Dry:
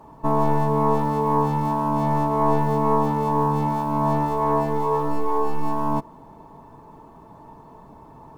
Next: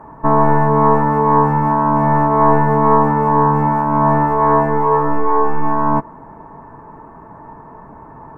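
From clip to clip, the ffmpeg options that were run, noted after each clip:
-af "highshelf=f=2.5k:t=q:w=3:g=-13.5,volume=6.5dB"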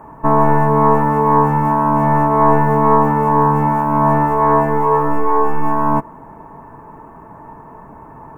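-af "aexciter=amount=1:drive=8.5:freq=2.4k"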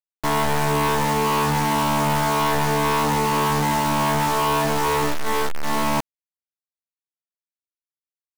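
-af "asoftclip=type=hard:threshold=-18dB,acrusher=bits=3:mix=0:aa=0.000001,volume=-2dB"

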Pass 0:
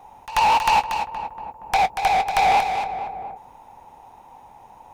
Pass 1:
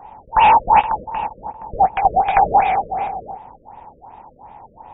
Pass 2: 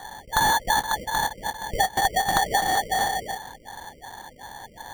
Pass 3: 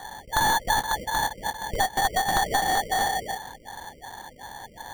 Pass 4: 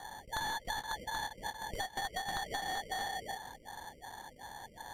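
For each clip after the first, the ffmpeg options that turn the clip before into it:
-af "afftfilt=real='re*lt(b*sr/1024,590*pow(3800/590,0.5+0.5*sin(2*PI*2.7*pts/sr)))':imag='im*lt(b*sr/1024,590*pow(3800/590,0.5+0.5*sin(2*PI*2.7*pts/sr)))':win_size=1024:overlap=0.75,volume=6.5dB"
-af "acompressor=threshold=-19dB:ratio=10,acrusher=samples=17:mix=1:aa=0.000001"
-af "aeval=exprs='clip(val(0),-1,0.0794)':c=same"
-filter_complex "[0:a]acrossover=split=1900|4800[a][b][c];[a]acompressor=threshold=-31dB:ratio=4[d];[b]acompressor=threshold=-33dB:ratio=4[e];[c]acompressor=threshold=-41dB:ratio=4[f];[d][e][f]amix=inputs=3:normalize=0,volume=-7.5dB" -ar 32000 -c:a aac -b:a 96k

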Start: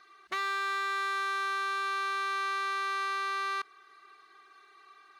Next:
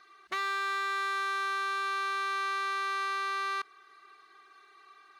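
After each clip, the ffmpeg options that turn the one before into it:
-af anull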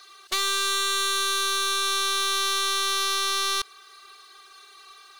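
-af "lowshelf=f=320:t=q:w=1.5:g=-9,aeval=exprs='(tanh(35.5*val(0)+0.55)-tanh(0.55))/35.5':c=same,aexciter=amount=5.4:drive=3.5:freq=2.9k,volume=7dB"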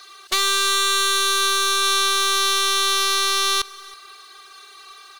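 -af "aecho=1:1:324:0.0794,volume=5.5dB"

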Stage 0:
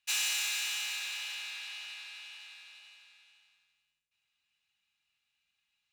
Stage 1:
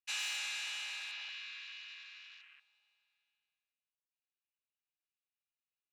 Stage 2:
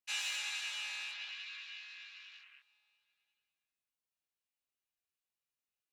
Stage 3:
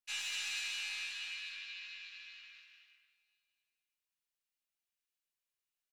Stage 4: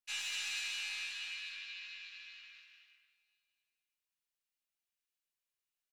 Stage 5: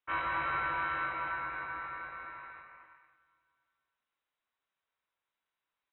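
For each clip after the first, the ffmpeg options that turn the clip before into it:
-af "afwtdn=0.00398,aemphasis=mode=reproduction:type=50kf,volume=-2.5dB"
-af "flanger=delay=20:depth=2.4:speed=0.53,volume=3dB"
-filter_complex "[0:a]acrossover=split=1200[a][b];[a]aeval=exprs='max(val(0),0)':c=same[c];[b]aecho=1:1:230|379.5|476.7|539.8|580.9:0.631|0.398|0.251|0.158|0.1[d];[c][d]amix=inputs=2:normalize=0,volume=-2dB"
-af anull
-af "lowpass=f=3.3k:t=q:w=0.5098,lowpass=f=3.3k:t=q:w=0.6013,lowpass=f=3.3k:t=q:w=0.9,lowpass=f=3.3k:t=q:w=2.563,afreqshift=-3900,volume=8.5dB"

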